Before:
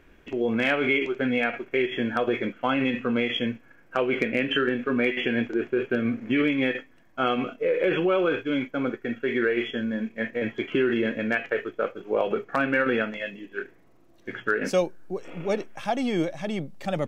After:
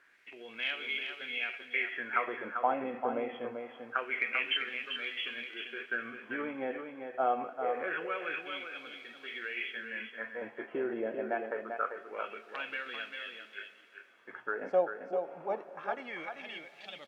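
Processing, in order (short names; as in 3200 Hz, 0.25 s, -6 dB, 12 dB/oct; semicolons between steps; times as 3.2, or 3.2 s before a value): high shelf 3800 Hz -10.5 dB; in parallel at -10 dB: requantised 8-bit, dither triangular; on the sum: wah 0.25 Hz 690–3600 Hz, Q 3.2; echo 0.393 s -6.5 dB; reverb RT60 5.1 s, pre-delay 47 ms, DRR 17 dB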